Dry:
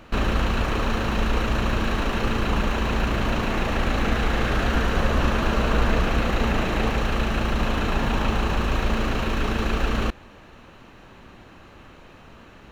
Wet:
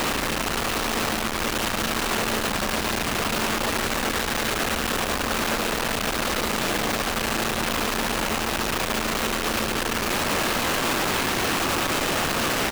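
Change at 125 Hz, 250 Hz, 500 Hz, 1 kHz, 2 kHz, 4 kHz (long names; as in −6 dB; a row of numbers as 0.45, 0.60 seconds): −8.0, −2.0, +0.5, +2.0, +3.5, +7.0 decibels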